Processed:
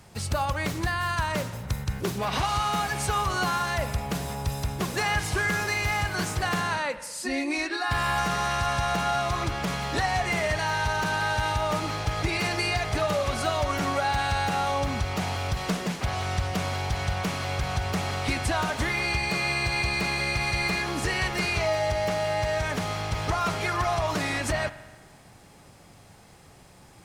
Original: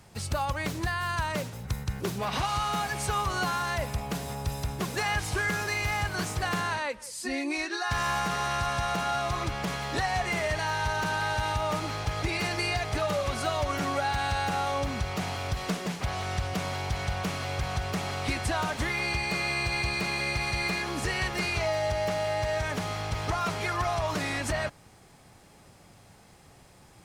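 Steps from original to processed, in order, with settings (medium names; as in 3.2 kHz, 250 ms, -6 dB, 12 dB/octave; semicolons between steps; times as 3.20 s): 7.67–8.18 s: peaking EQ 6.1 kHz -13 dB 0.21 oct; spring tank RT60 1.4 s, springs 44 ms, chirp 50 ms, DRR 13 dB; trim +2.5 dB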